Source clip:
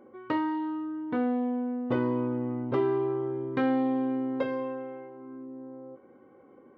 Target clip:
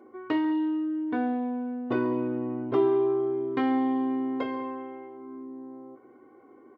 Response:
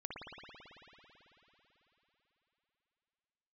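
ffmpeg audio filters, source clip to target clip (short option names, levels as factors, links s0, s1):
-filter_complex "[0:a]highpass=120,aecho=1:1:2.8:0.64,asplit=2[s0][s1];[1:a]atrim=start_sample=2205,atrim=end_sample=4410,adelay=141[s2];[s1][s2]afir=irnorm=-1:irlink=0,volume=0.266[s3];[s0][s3]amix=inputs=2:normalize=0"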